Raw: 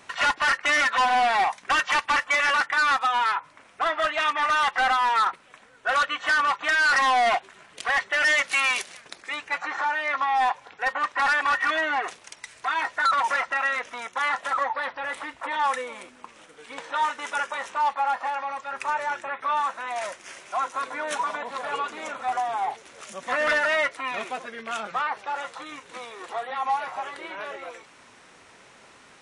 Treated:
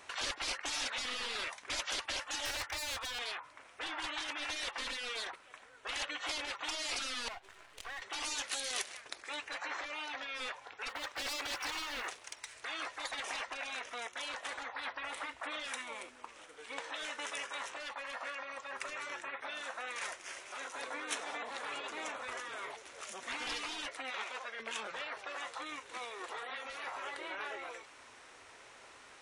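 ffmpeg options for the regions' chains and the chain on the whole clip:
ffmpeg -i in.wav -filter_complex "[0:a]asettb=1/sr,asplit=3[link_01][link_02][link_03];[link_01]atrim=end=2.454[link_04];[link_02]atrim=start=2.45:end=3.19,asetpts=PTS-STARTPTS,afade=type=in:duration=0.004:curve=qsin,afade=type=out:start_time=0.736:duration=0.004:curve=qsin,asoftclip=type=hard:threshold=-26.5dB,lowshelf=frequency=120:width_type=q:width=3:gain=8[link_05];[link_03]atrim=start=3.186[link_06];[link_04][link_05]acrossfade=duration=0.004:curve1=hsin:curve2=qsin[link_07];[link_07][link_06]acrossfade=duration=0.004:curve1=qsin:curve2=hsin,asettb=1/sr,asplit=3[link_08][link_09][link_10];[link_08]atrim=end=7.284[link_11];[link_09]atrim=start=7.28:end=8.02,asetpts=PTS-STARTPTS,afade=type=in:duration=0.004:curve=qsin,afade=type=out:start_time=0.736:duration=0.004:curve=qsin,aeval=exprs='if(lt(val(0),0),0.251*val(0),val(0))':channel_layout=same,acompressor=threshold=-40dB:ratio=3:attack=3.2:release=140:knee=1:detection=peak[link_12];[link_10]atrim=start=8.016[link_13];[link_11][link_12]acrossfade=duration=0.004:curve1=hsin:curve2=qsin[link_14];[link_14][link_13]acrossfade=duration=0.004:curve1=qsin:curve2=hsin,asettb=1/sr,asplit=3[link_15][link_16][link_17];[link_15]atrim=end=10.894[link_18];[link_16]atrim=start=10.89:end=12.55,asetpts=PTS-STARTPTS,afade=type=in:duration=0.004:curve=qsin,afade=type=out:start_time=1.656:duration=0.004:curve=qsin,volume=24.5dB,asoftclip=hard,volume=-24.5dB,acrusher=bits=8:mode=log:mix=0:aa=0.000001[link_19];[link_17]atrim=start=12.546[link_20];[link_18][link_19]acrossfade=duration=0.004:curve1=hsin:curve2=qsin[link_21];[link_21][link_20]acrossfade=duration=0.004:curve1=qsin:curve2=hsin,asettb=1/sr,asplit=3[link_22][link_23][link_24];[link_22]atrim=end=24.104[link_25];[link_23]atrim=start=24.1:end=24.6,asetpts=PTS-STARTPTS,afade=type=in:duration=0.004:curve=qsin,afade=type=out:start_time=0.496:duration=0.004:curve=qsin,lowpass=7400,lowshelf=frequency=490:width_type=q:width=1.5:gain=-9.5[link_26];[link_24]atrim=start=24.596[link_27];[link_25][link_26]acrossfade=duration=0.004:curve1=hsin:curve2=qsin[link_28];[link_28][link_27]acrossfade=duration=0.004:curve1=qsin:curve2=hsin,afftfilt=real='re*lt(hypot(re,im),0.1)':imag='im*lt(hypot(re,im),0.1)':win_size=1024:overlap=0.75,equalizer=frequency=180:width_type=o:width=0.94:gain=-13,volume=-3.5dB" out.wav

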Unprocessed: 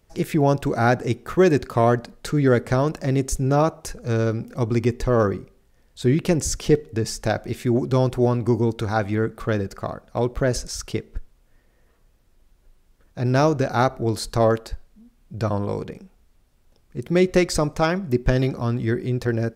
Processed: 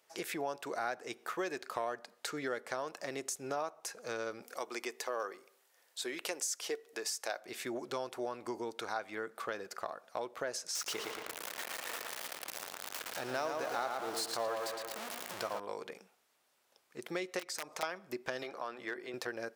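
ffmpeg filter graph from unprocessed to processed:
ffmpeg -i in.wav -filter_complex "[0:a]asettb=1/sr,asplit=3[link_01][link_02][link_03];[link_01]atrim=end=4.424[link_04];[link_02]atrim=start=4.42:end=7.4,asetpts=PTS-STARTPTS,afade=type=in:duration=0.004:curve=qsin,afade=type=out:start_time=2.976:duration=0.004:curve=qsin,highpass=350,highshelf=frequency=7100:gain=7[link_05];[link_03]atrim=start=7.396[link_06];[link_04][link_05]acrossfade=duration=0.004:curve1=hsin:curve2=qsin[link_07];[link_07][link_06]acrossfade=duration=0.004:curve1=qsin:curve2=hsin,asettb=1/sr,asplit=3[link_08][link_09][link_10];[link_08]atrim=end=10.754[link_11];[link_09]atrim=start=10.75:end=15.6,asetpts=PTS-STARTPTS,afade=type=in:duration=0.004:curve=qsin,afade=type=out:start_time=4.846:duration=0.004:curve=qsin,aeval=exprs='val(0)+0.5*0.0501*sgn(val(0))':channel_layout=same,asplit=2[link_12][link_13];[link_13]adelay=113,lowpass=frequency=4300:poles=1,volume=-4dB,asplit=2[link_14][link_15];[link_15]adelay=113,lowpass=frequency=4300:poles=1,volume=0.47,asplit=2[link_16][link_17];[link_17]adelay=113,lowpass=frequency=4300:poles=1,volume=0.47,asplit=2[link_18][link_19];[link_19]adelay=113,lowpass=frequency=4300:poles=1,volume=0.47,asplit=2[link_20][link_21];[link_21]adelay=113,lowpass=frequency=4300:poles=1,volume=0.47,asplit=2[link_22][link_23];[link_23]adelay=113,lowpass=frequency=4300:poles=1,volume=0.47[link_24];[link_12][link_14][link_16][link_18][link_20][link_22][link_24]amix=inputs=7:normalize=0,atrim=end_sample=213885[link_25];[link_10]atrim=start=15.596[link_26];[link_11][link_25]acrossfade=duration=0.004:curve1=hsin:curve2=qsin[link_27];[link_27][link_26]acrossfade=duration=0.004:curve1=qsin:curve2=hsin,asettb=1/sr,asplit=3[link_28][link_29][link_30];[link_28]atrim=end=17.394[link_31];[link_29]atrim=start=17.39:end=17.83,asetpts=PTS-STARTPTS,afade=type=in:duration=0.004:curve=qsin,afade=type=out:start_time=0.436:duration=0.004:curve=qsin,aeval=exprs='(mod(3.76*val(0)+1,2)-1)/3.76':channel_layout=same,acompressor=threshold=-27dB:ratio=6:attack=3.2:release=140:knee=1:detection=peak[link_32];[link_30]atrim=start=17.826[link_33];[link_31][link_32]acrossfade=duration=0.004:curve1=hsin:curve2=qsin[link_34];[link_34][link_33]acrossfade=duration=0.004:curve1=qsin:curve2=hsin,asettb=1/sr,asplit=3[link_35][link_36][link_37];[link_35]atrim=end=18.434[link_38];[link_36]atrim=start=18.43:end=19.14,asetpts=PTS-STARTPTS,afade=type=in:duration=0.004:curve=qsin,afade=type=out:start_time=0.706:duration=0.004:curve=qsin,bass=frequency=250:gain=-11,treble=frequency=4000:gain=-9,bandreject=frequency=60:width_type=h:width=6,bandreject=frequency=120:width_type=h:width=6,bandreject=frequency=180:width_type=h:width=6,bandreject=frequency=240:width_type=h:width=6,bandreject=frequency=300:width_type=h:width=6,bandreject=frequency=360:width_type=h:width=6,bandreject=frequency=420:width_type=h:width=6,asoftclip=type=hard:threshold=-18dB[link_39];[link_37]atrim=start=19.136[link_40];[link_38][link_39]acrossfade=duration=0.004:curve1=hsin:curve2=qsin[link_41];[link_41][link_40]acrossfade=duration=0.004:curve1=qsin:curve2=hsin,highpass=650,acompressor=threshold=-36dB:ratio=3,volume=-1.5dB" out.wav

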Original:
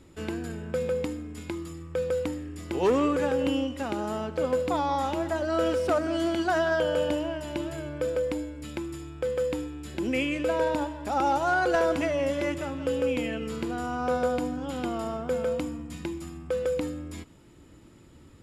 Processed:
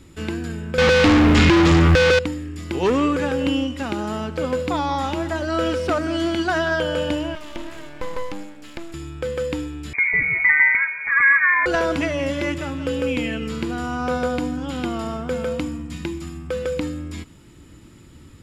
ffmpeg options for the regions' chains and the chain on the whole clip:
ffmpeg -i in.wav -filter_complex "[0:a]asettb=1/sr,asplit=3[link_01][link_02][link_03];[link_01]atrim=end=0.784[link_04];[link_02]atrim=start=0.78:end=2.19,asetpts=PTS-STARTPTS,afade=type=in:duration=0.004:curve=qsin,afade=type=out:start_time=1.406:duration=0.004:curve=qsin,aemphasis=mode=reproduction:type=bsi,asplit=2[link_05][link_06];[link_06]highpass=frequency=720:poles=1,volume=42dB,asoftclip=type=tanh:threshold=-12.5dB[link_07];[link_05][link_07]amix=inputs=2:normalize=0,lowpass=frequency=5800:poles=1,volume=-6dB,acrusher=bits=9:mode=log:mix=0:aa=0.000001[link_08];[link_03]atrim=start=2.186[link_09];[link_04][link_08]acrossfade=duration=0.004:curve1=hsin:curve2=qsin[link_10];[link_10][link_09]acrossfade=duration=0.004:curve1=qsin:curve2=hsin,asettb=1/sr,asplit=3[link_11][link_12][link_13];[link_11]atrim=end=7.354[link_14];[link_12]atrim=start=7.35:end=8.94,asetpts=PTS-STARTPTS,afade=type=in:duration=0.004:curve=qsin,afade=type=out:start_time=1.586:duration=0.004:curve=qsin,acrossover=split=4300[link_15][link_16];[link_16]acompressor=threshold=-55dB:ratio=4:attack=1:release=60[link_17];[link_15][link_17]amix=inputs=2:normalize=0,highpass=290,aeval=exprs='max(val(0),0)':channel_layout=same[link_18];[link_13]atrim=start=8.936[link_19];[link_14][link_18]acrossfade=duration=0.004:curve1=hsin:curve2=qsin[link_20];[link_20][link_19]acrossfade=duration=0.004:curve1=qsin:curve2=hsin,asettb=1/sr,asplit=3[link_21][link_22][link_23];[link_21]atrim=end=9.934[link_24];[link_22]atrim=start=9.93:end=11.66,asetpts=PTS-STARTPTS,afade=type=in:duration=0.004:curve=qsin,afade=type=out:start_time=1.726:duration=0.004:curve=qsin,aecho=1:1:5.9:0.54,atrim=end_sample=76293,aeval=exprs='val(0)+0.00398*(sin(2*PI*50*n/s)+sin(2*PI*2*50*n/s)/2+sin(2*PI*3*50*n/s)/3+sin(2*PI*4*50*n/s)/4+sin(2*PI*5*50*n/s)/5)':channel_layout=same,lowpass=frequency=2100:width_type=q:width=0.5098,lowpass=frequency=2100:width_type=q:width=0.6013,lowpass=frequency=2100:width_type=q:width=0.9,lowpass=frequency=2100:width_type=q:width=2.563,afreqshift=-2500[link_25];[link_23]atrim=start=11.656[link_26];[link_24][link_25]acrossfade=duration=0.004:curve1=hsin:curve2=qsin[link_27];[link_27][link_26]acrossfade=duration=0.004:curve1=qsin:curve2=hsin,acrossover=split=6300[link_28][link_29];[link_29]acompressor=threshold=-59dB:ratio=4:attack=1:release=60[link_30];[link_28][link_30]amix=inputs=2:normalize=0,equalizer=frequency=600:width_type=o:width=1.7:gain=-7,volume=8.5dB" out.wav

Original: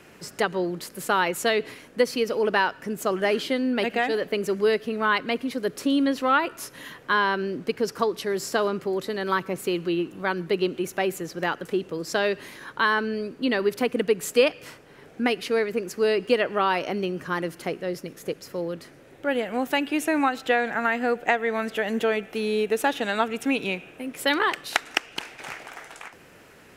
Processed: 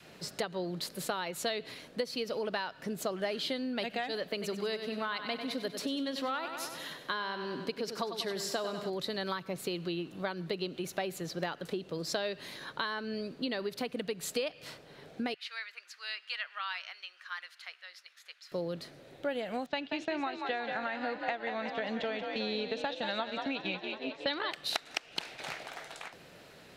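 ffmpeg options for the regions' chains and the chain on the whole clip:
ffmpeg -i in.wav -filter_complex "[0:a]asettb=1/sr,asplit=3[link_01][link_02][link_03];[link_01]atrim=end=4.224[link_04];[link_02]atrim=start=4.22:end=8.9,asetpts=PTS-STARTPTS,afade=type=in:duration=0.004:curve=qsin,afade=type=out:start_time=4.676:duration=0.004:curve=qsin,equalizer=frequency=63:width=0.97:gain=-13.5,aecho=1:1:96|192|288|384|480|576:0.316|0.171|0.0922|0.0498|0.0269|0.0145,atrim=end_sample=206388[link_05];[link_03]atrim=start=8.896[link_06];[link_04][link_05]acrossfade=duration=0.004:curve1=hsin:curve2=qsin[link_07];[link_07][link_06]acrossfade=duration=0.004:curve1=qsin:curve2=hsin,asettb=1/sr,asplit=3[link_08][link_09][link_10];[link_08]atrim=end=15.344[link_11];[link_09]atrim=start=15.34:end=18.52,asetpts=PTS-STARTPTS,afade=type=in:duration=0.004:curve=qsin,afade=type=out:start_time=3.176:duration=0.004:curve=qsin,highpass=frequency=1400:width=0.5412,highpass=frequency=1400:width=1.3066,aemphasis=mode=reproduction:type=75kf[link_12];[link_10]atrim=start=18.516[link_13];[link_11][link_12]acrossfade=duration=0.004:curve1=hsin:curve2=qsin[link_14];[link_14][link_13]acrossfade=duration=0.004:curve1=qsin:curve2=hsin,asettb=1/sr,asplit=3[link_15][link_16][link_17];[link_15]atrim=end=19.664[link_18];[link_16]atrim=start=19.66:end=24.51,asetpts=PTS-STARTPTS,afade=type=in:duration=0.004:curve=qsin,afade=type=out:start_time=4.846:duration=0.004:curve=qsin,agate=range=-11dB:threshold=-33dB:ratio=16:release=100:detection=peak,lowpass=frequency=5500:width=0.5412,lowpass=frequency=5500:width=1.3066,asplit=8[link_19][link_20][link_21][link_22][link_23][link_24][link_25][link_26];[link_20]adelay=183,afreqshift=41,volume=-8dB[link_27];[link_21]adelay=366,afreqshift=82,volume=-12.7dB[link_28];[link_22]adelay=549,afreqshift=123,volume=-17.5dB[link_29];[link_23]adelay=732,afreqshift=164,volume=-22.2dB[link_30];[link_24]adelay=915,afreqshift=205,volume=-26.9dB[link_31];[link_25]adelay=1098,afreqshift=246,volume=-31.7dB[link_32];[link_26]adelay=1281,afreqshift=287,volume=-36.4dB[link_33];[link_19][link_27][link_28][link_29][link_30][link_31][link_32][link_33]amix=inputs=8:normalize=0,atrim=end_sample=213885[link_34];[link_17]atrim=start=24.506[link_35];[link_18][link_34]acrossfade=duration=0.004:curve1=hsin:curve2=qsin[link_36];[link_36][link_35]acrossfade=duration=0.004:curve1=qsin:curve2=hsin,adynamicequalizer=threshold=0.02:dfrequency=420:dqfactor=1.2:tfrequency=420:tqfactor=1.2:attack=5:release=100:ratio=0.375:range=2.5:mode=cutabove:tftype=bell,acompressor=threshold=-28dB:ratio=6,equalizer=frequency=160:width_type=o:width=0.67:gain=5,equalizer=frequency=630:width_type=o:width=0.67:gain=6,equalizer=frequency=4000:width_type=o:width=0.67:gain=11,volume=-6dB" out.wav

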